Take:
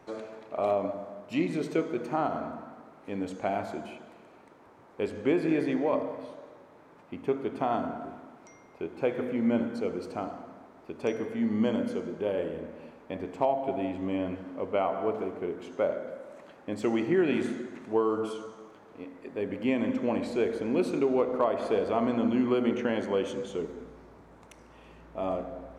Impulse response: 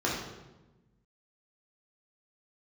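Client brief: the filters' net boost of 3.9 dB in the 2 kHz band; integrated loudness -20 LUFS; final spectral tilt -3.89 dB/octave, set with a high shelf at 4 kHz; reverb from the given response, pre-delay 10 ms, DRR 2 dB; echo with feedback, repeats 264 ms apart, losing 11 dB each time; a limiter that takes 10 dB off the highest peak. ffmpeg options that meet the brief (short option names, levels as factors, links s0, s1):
-filter_complex "[0:a]equalizer=f=2000:t=o:g=3.5,highshelf=f=4000:g=5.5,alimiter=limit=0.075:level=0:latency=1,aecho=1:1:264|528|792:0.282|0.0789|0.0221,asplit=2[s0][s1];[1:a]atrim=start_sample=2205,adelay=10[s2];[s1][s2]afir=irnorm=-1:irlink=0,volume=0.237[s3];[s0][s3]amix=inputs=2:normalize=0,volume=2.99"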